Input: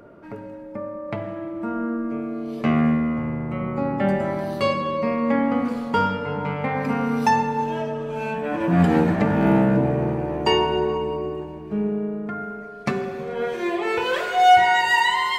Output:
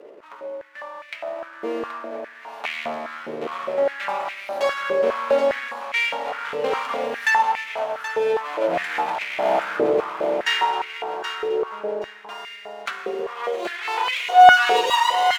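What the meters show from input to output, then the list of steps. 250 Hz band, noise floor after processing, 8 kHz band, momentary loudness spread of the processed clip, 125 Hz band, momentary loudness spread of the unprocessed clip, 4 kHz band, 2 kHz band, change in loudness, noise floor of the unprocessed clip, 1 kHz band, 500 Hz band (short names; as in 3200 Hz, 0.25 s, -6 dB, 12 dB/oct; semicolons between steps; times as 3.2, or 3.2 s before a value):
-15.0 dB, -43 dBFS, n/a, 16 LU, -25.0 dB, 13 LU, +2.5 dB, +3.5 dB, +0.5 dB, -37 dBFS, +2.0 dB, +1.5 dB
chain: minimum comb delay 0.3 ms; feedback echo 0.776 s, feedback 20%, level -8 dB; stepped high-pass 4.9 Hz 450–2200 Hz; gain -2 dB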